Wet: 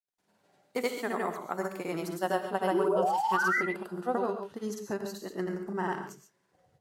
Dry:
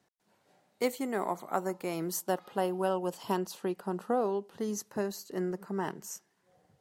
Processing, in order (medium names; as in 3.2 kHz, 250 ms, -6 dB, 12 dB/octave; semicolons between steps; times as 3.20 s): dynamic bell 1.7 kHz, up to +5 dB, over -46 dBFS, Q 0.75; painted sound rise, 2.68–3.65 s, 310–2100 Hz -27 dBFS; granulator 100 ms, pitch spread up and down by 0 st; gated-style reverb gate 160 ms rising, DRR 6.5 dB